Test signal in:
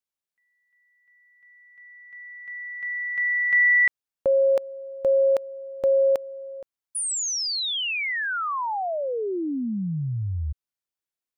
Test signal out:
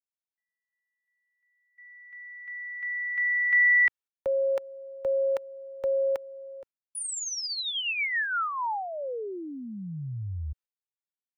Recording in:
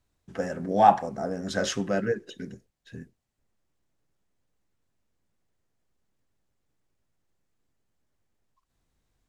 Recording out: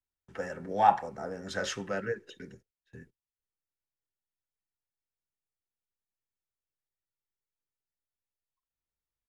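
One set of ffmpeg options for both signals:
-filter_complex "[0:a]agate=range=-17dB:threshold=-49dB:ratio=16:release=109:detection=rms,aecho=1:1:2.2:0.32,acrossover=split=290|430|2300[a][b][c][d];[b]acompressor=threshold=-40dB:ratio=6:release=296[e];[c]crystalizer=i=8:c=0[f];[a][e][f][d]amix=inputs=4:normalize=0,volume=-7dB"

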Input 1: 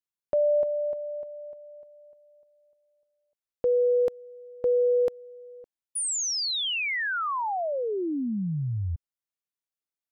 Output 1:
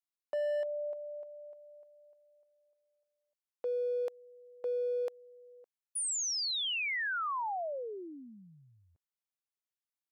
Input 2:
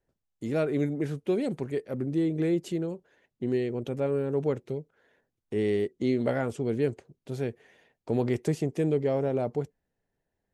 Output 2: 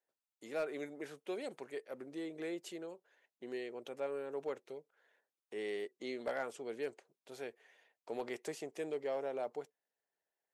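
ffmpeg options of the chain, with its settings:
-af "highpass=600,asoftclip=type=hard:threshold=-24.5dB,volume=-5.5dB"

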